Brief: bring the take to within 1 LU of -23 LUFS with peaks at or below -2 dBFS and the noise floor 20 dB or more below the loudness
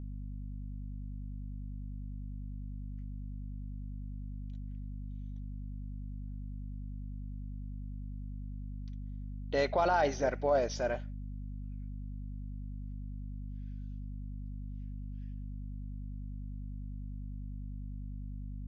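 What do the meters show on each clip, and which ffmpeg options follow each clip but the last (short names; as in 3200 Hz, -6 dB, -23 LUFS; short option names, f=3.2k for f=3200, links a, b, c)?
hum 50 Hz; harmonics up to 250 Hz; hum level -38 dBFS; loudness -39.5 LUFS; peak -17.5 dBFS; loudness target -23.0 LUFS
-> -af "bandreject=f=50:t=h:w=6,bandreject=f=100:t=h:w=6,bandreject=f=150:t=h:w=6,bandreject=f=200:t=h:w=6,bandreject=f=250:t=h:w=6"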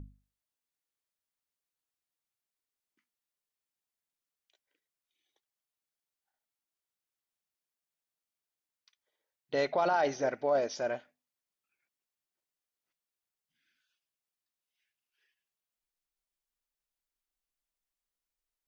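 hum none; loudness -31.0 LUFS; peak -18.0 dBFS; loudness target -23.0 LUFS
-> -af "volume=8dB"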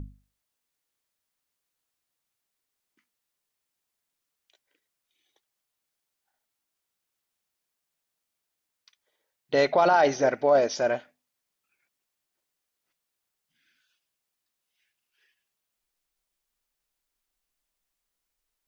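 loudness -23.0 LUFS; peak -10.0 dBFS; noise floor -84 dBFS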